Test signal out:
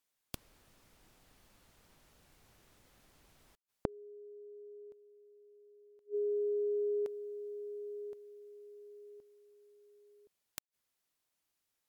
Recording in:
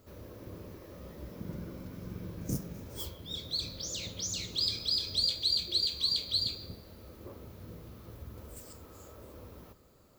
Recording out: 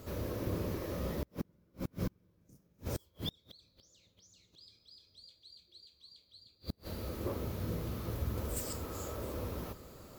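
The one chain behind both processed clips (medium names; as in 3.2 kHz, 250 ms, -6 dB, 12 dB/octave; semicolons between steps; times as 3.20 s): inverted gate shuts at -34 dBFS, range -38 dB; trim +10.5 dB; MP3 128 kbps 48 kHz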